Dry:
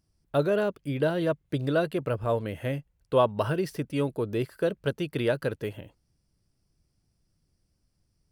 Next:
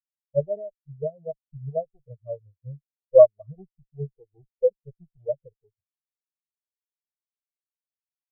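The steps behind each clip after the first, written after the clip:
lower of the sound and its delayed copy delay 1.7 ms
every bin expanded away from the loudest bin 4 to 1
level +7 dB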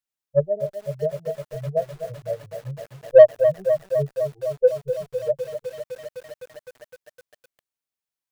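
in parallel at −3.5 dB: soft clipping −12 dBFS, distortion −10 dB
on the sum: feedback echo at a low word length 254 ms, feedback 80%, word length 7 bits, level −9 dB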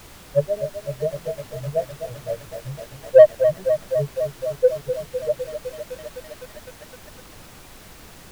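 background noise pink −44 dBFS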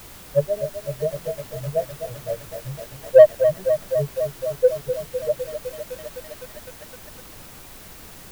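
high-shelf EQ 11,000 Hz +9 dB

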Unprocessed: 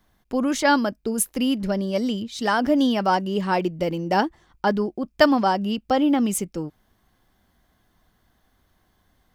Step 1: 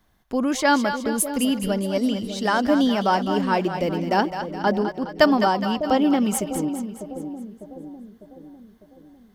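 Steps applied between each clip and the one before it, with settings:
echo with a time of its own for lows and highs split 620 Hz, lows 601 ms, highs 208 ms, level −8.5 dB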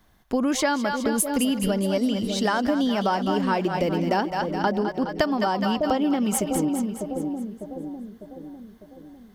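downward compressor 12 to 1, threshold −23 dBFS, peak gain reduction 14 dB
level +4 dB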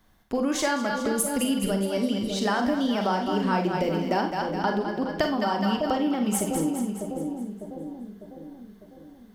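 four-comb reverb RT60 0.33 s, combs from 33 ms, DRR 4.5 dB
level −3 dB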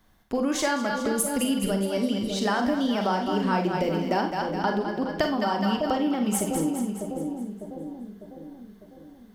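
no processing that can be heard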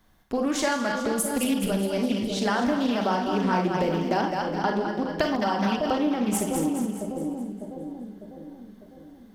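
feedback delay that plays each chunk backwards 132 ms, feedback 41%, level −11 dB
highs frequency-modulated by the lows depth 0.22 ms

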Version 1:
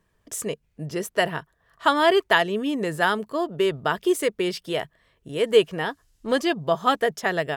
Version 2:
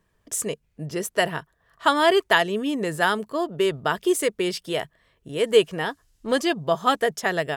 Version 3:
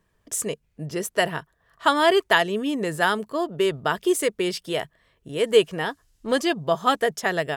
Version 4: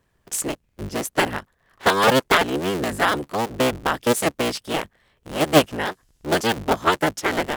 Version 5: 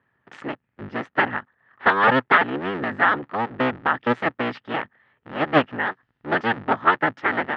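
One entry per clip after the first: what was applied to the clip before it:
dynamic equaliser 8,600 Hz, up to +5 dB, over −45 dBFS, Q 0.75
no processing that can be heard
sub-harmonics by changed cycles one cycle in 3, inverted; level +1.5 dB
loudspeaker in its box 120–3,100 Hz, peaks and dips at 120 Hz +6 dB, 250 Hz +5 dB, 860 Hz +6 dB, 1,300 Hz +8 dB, 1,800 Hz +10 dB; level −5 dB

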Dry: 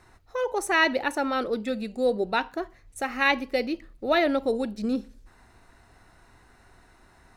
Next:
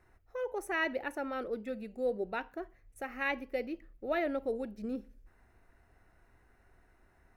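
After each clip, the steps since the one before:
octave-band graphic EQ 125/250/1,000/4,000/8,000 Hz −4/−4/−7/−12/−10 dB
level −6 dB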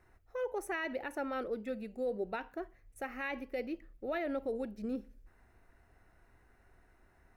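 brickwall limiter −28 dBFS, peak gain reduction 7.5 dB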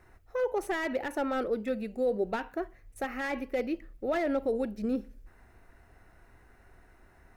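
slew-rate limiting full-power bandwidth 21 Hz
level +7 dB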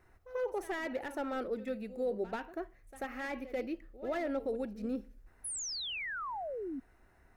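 echo ahead of the sound 89 ms −15 dB
sound drawn into the spectrogram fall, 0:05.44–0:06.80, 250–11,000 Hz −33 dBFS
level −6 dB

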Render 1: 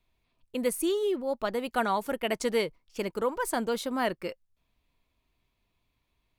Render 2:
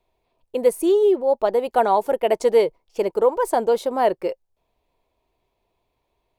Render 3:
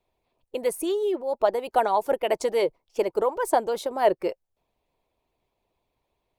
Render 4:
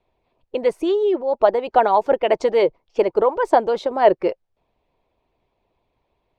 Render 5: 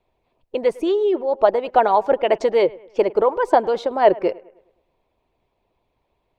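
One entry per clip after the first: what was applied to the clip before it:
flat-topped bell 580 Hz +12 dB
harmonic and percussive parts rebalanced harmonic −9 dB
high-frequency loss of the air 170 metres; level +7 dB
bucket-brigade delay 104 ms, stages 2,048, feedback 44%, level −22 dB

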